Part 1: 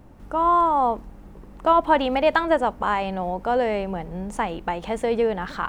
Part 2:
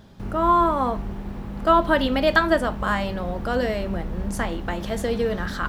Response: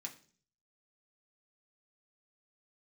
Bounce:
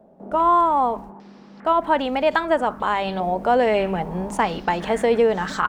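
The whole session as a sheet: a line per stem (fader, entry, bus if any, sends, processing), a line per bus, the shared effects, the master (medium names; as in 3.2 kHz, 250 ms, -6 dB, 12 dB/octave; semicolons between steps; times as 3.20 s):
+1.0 dB, 0.00 s, no send, gate -36 dBFS, range -21 dB
-10.0 dB, 0.8 ms, no send, steep high-pass 170 Hz 48 dB/octave; compressor with a negative ratio -28 dBFS; step-sequenced low-pass 2.5 Hz 650–7300 Hz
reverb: none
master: bass shelf 74 Hz -9.5 dB; gain riding 2 s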